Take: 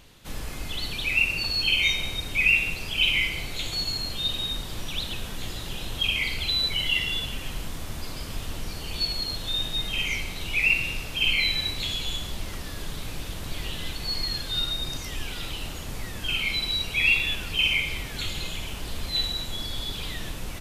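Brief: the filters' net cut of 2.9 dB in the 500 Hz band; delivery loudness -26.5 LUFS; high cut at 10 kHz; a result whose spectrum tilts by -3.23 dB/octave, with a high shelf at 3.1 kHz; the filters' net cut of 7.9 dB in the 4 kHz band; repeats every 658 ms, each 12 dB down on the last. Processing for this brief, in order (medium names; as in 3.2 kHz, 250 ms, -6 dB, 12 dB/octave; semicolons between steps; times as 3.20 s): low-pass 10 kHz; peaking EQ 500 Hz -3.5 dB; treble shelf 3.1 kHz -3 dB; peaking EQ 4 kHz -8 dB; feedback delay 658 ms, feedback 25%, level -12 dB; trim +5 dB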